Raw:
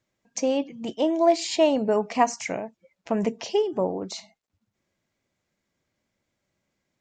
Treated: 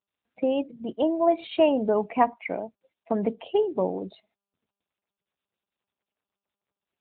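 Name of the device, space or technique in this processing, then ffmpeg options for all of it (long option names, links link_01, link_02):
mobile call with aggressive noise cancelling: -filter_complex "[0:a]asplit=3[link_01][link_02][link_03];[link_01]afade=type=out:start_time=2.46:duration=0.02[link_04];[link_02]highpass=160,afade=type=in:start_time=2.46:duration=0.02,afade=type=out:start_time=3.68:duration=0.02[link_05];[link_03]afade=type=in:start_time=3.68:duration=0.02[link_06];[link_04][link_05][link_06]amix=inputs=3:normalize=0,highpass=110,afftdn=noise_reduction=24:noise_floor=-36" -ar 8000 -c:a libopencore_amrnb -b:a 10200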